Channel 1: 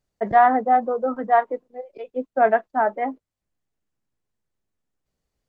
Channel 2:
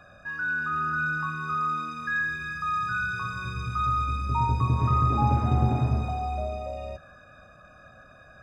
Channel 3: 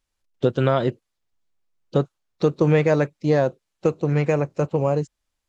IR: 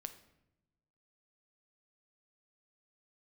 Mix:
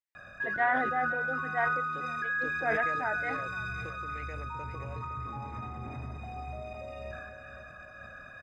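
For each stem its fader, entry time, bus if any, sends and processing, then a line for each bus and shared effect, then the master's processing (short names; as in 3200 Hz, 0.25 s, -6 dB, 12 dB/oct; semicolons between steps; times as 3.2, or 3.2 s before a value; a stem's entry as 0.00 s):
-16.5 dB, 0.25 s, no bus, no send, echo send -21.5 dB, high shelf 2700 Hz +9.5 dB
-2.0 dB, 0.15 s, bus A, no send, echo send -13.5 dB, compressor, threshold -30 dBFS, peak gain reduction 12 dB
-19.0 dB, 0.00 s, bus A, no send, echo send -17.5 dB, HPF 240 Hz 12 dB/oct
bus A: 0.0 dB, pump 107 bpm, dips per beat 1, -11 dB, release 0.188 s; limiter -34 dBFS, peak gain reduction 11 dB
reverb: off
echo: feedback echo 0.514 s, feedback 38%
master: bell 2000 Hz +12.5 dB 0.74 oct; sustainer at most 28 dB/s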